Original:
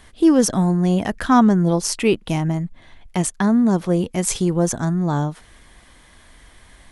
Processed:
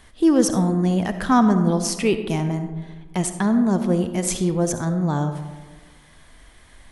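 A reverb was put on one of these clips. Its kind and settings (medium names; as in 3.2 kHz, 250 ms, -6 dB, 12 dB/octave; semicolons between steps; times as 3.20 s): algorithmic reverb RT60 1.4 s, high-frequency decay 0.35×, pre-delay 25 ms, DRR 8.5 dB; trim -2.5 dB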